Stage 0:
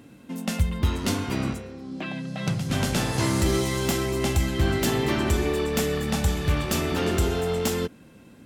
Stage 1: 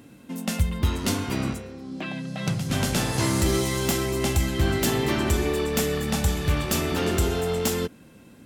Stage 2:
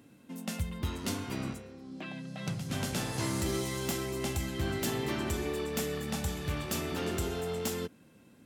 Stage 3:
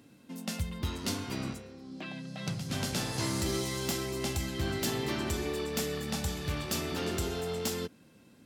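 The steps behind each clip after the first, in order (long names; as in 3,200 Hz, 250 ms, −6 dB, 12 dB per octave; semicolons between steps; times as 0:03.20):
high-shelf EQ 6,800 Hz +4.5 dB
high-pass filter 71 Hz; level −9 dB
parametric band 4,700 Hz +5 dB 0.82 octaves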